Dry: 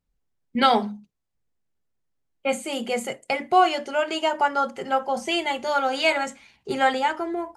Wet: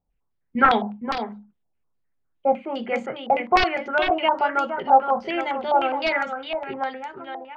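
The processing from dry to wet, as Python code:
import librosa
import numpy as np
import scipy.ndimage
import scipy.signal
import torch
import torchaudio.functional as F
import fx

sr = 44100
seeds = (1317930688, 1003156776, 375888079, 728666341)

y = fx.fade_out_tail(x, sr, length_s=1.71)
y = (np.mod(10.0 ** (10.0 / 20.0) * y + 1.0, 2.0) - 1.0) / 10.0 ** (10.0 / 20.0)
y = fx.air_absorb(y, sr, metres=380.0)
y = y + 10.0 ** (-7.5 / 20.0) * np.pad(y, (int(464 * sr / 1000.0), 0))[:len(y)]
y = fx.filter_held_lowpass(y, sr, hz=9.8, low_hz=780.0, high_hz=6500.0)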